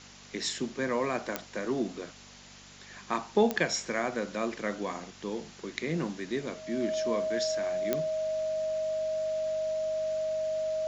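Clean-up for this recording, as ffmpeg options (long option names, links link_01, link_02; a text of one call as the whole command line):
ffmpeg -i in.wav -af "adeclick=threshold=4,bandreject=frequency=48.5:width_type=h:width=4,bandreject=frequency=97:width_type=h:width=4,bandreject=frequency=145.5:width_type=h:width=4,bandreject=frequency=194:width_type=h:width=4,bandreject=frequency=242.5:width_type=h:width=4,bandreject=frequency=630:width=30,afwtdn=0.004" out.wav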